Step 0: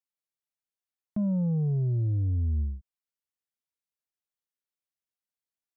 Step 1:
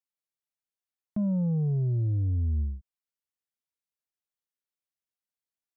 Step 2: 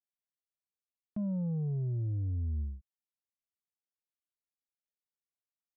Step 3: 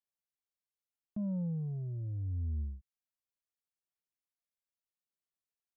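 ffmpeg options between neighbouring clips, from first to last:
-af anull
-af "adynamicsmooth=sensitivity=7.5:basefreq=720,volume=-6.5dB"
-af "aphaser=in_gain=1:out_gain=1:delay=1.9:decay=0.37:speed=0.76:type=sinusoidal,volume=-5.5dB"

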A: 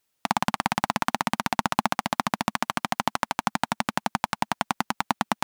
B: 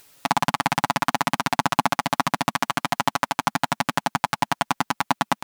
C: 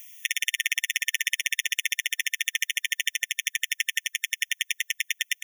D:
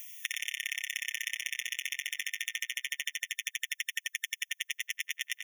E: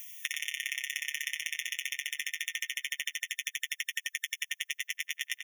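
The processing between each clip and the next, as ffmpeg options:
-af "aecho=1:1:7.1:0.9,acompressor=mode=upward:threshold=-39dB:ratio=2.5,volume=1dB"
-af "highshelf=f=12k:g=9,afftfilt=real='re*eq(mod(floor(b*sr/1024/1800),2),1)':imag='im*eq(mod(floor(b*sr/1024/1800),2),1)':win_size=1024:overlap=0.75,volume=4.5dB"
-filter_complex "[0:a]acompressor=threshold=-35dB:ratio=2.5,asplit=2[a][b];[b]adelay=89,lowpass=f=2.5k:p=1,volume=-3.5dB,asplit=2[c][d];[d]adelay=89,lowpass=f=2.5k:p=1,volume=0.24,asplit=2[e][f];[f]adelay=89,lowpass=f=2.5k:p=1,volume=0.24[g];[a][c][e][g]amix=inputs=4:normalize=0"
-filter_complex "[0:a]asplit=2[a][b];[b]adelay=13,volume=-11dB[c];[a][c]amix=inputs=2:normalize=0"

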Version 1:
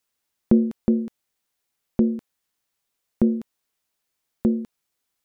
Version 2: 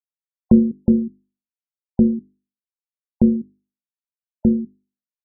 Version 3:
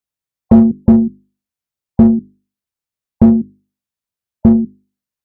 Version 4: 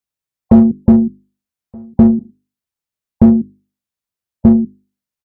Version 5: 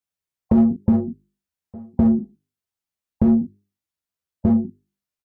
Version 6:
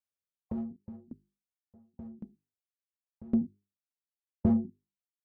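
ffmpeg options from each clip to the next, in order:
-af "afftfilt=real='re*gte(hypot(re,im),0.0398)':imag='im*gte(hypot(re,im),0.0398)':win_size=1024:overlap=0.75,equalizer=f=76:w=0.43:g=11.5,bandreject=f=50:t=h:w=6,bandreject=f=100:t=h:w=6,bandreject=f=150:t=h:w=6,bandreject=f=200:t=h:w=6,bandreject=f=250:t=h:w=6,bandreject=f=300:t=h:w=6,bandreject=f=350:t=h:w=6,bandreject=f=400:t=h:w=6"
-filter_complex "[0:a]asplit=2[a][b];[b]asoftclip=type=hard:threshold=-14dB,volume=-5.5dB[c];[a][c]amix=inputs=2:normalize=0,equalizer=f=85:w=0.6:g=9.5,acontrast=24,volume=-1.5dB"
-filter_complex "[0:a]asplit=2[a][b];[b]adelay=1224,volume=-26dB,highshelf=f=4k:g=-27.6[c];[a][c]amix=inputs=2:normalize=0"
-filter_complex "[0:a]asplit=2[a][b];[b]adelay=38,volume=-10dB[c];[a][c]amix=inputs=2:normalize=0,flanger=delay=9.5:depth=5.7:regen=0:speed=1.1:shape=triangular,alimiter=limit=-9.5dB:level=0:latency=1:release=49"
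-af "aeval=exprs='val(0)*pow(10,-27*if(lt(mod(0.9*n/s,1),2*abs(0.9)/1000),1-mod(0.9*n/s,1)/(2*abs(0.9)/1000),(mod(0.9*n/s,1)-2*abs(0.9)/1000)/(1-2*abs(0.9)/1000))/20)':c=same,volume=-6.5dB"

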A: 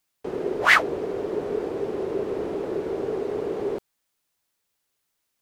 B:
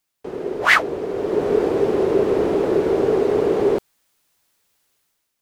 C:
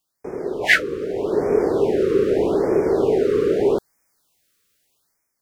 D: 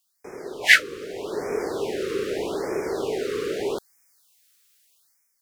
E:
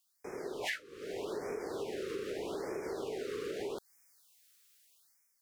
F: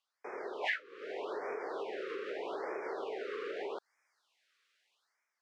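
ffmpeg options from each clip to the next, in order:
-af "dynaudnorm=f=110:g=9:m=10dB"
-af "afftfilt=real='re*(1-between(b*sr/1024,740*pow(3600/740,0.5+0.5*sin(2*PI*0.81*pts/sr))/1.41,740*pow(3600/740,0.5+0.5*sin(2*PI*0.81*pts/sr))*1.41))':imag='im*(1-between(b*sr/1024,740*pow(3600/740,0.5+0.5*sin(2*PI*0.81*pts/sr))/1.41,740*pow(3600/740,0.5+0.5*sin(2*PI*0.81*pts/sr))*1.41))':win_size=1024:overlap=0.75"
-af "tiltshelf=f=1.2k:g=-8.5,volume=-3dB"
-af "acompressor=threshold=-31dB:ratio=16,volume=-4dB"
-af "highpass=600,lowpass=2.3k,volume=5.5dB"

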